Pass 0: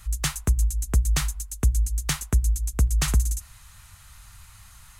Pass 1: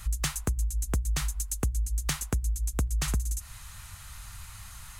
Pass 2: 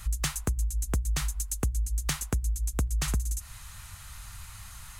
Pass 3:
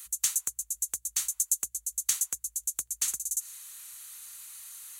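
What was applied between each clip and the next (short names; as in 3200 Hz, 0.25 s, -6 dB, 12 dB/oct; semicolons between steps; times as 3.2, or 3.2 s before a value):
compressor 5:1, threshold -30 dBFS, peak gain reduction 13.5 dB; overloaded stage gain 24 dB; gain +4 dB
nothing audible
differentiator; notch 5100 Hz, Q 8.8; dynamic EQ 6800 Hz, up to +6 dB, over -50 dBFS, Q 2; gain +3.5 dB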